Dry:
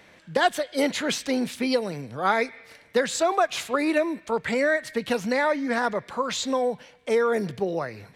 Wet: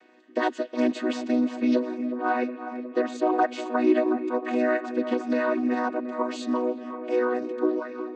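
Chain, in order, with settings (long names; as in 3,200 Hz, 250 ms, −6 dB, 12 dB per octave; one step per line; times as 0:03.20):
channel vocoder with a chord as carrier major triad, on B3
0:02.09–0:03.32: high-shelf EQ 3,800 Hz −7 dB
delay with a low-pass on its return 364 ms, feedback 74%, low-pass 1,800 Hz, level −11 dB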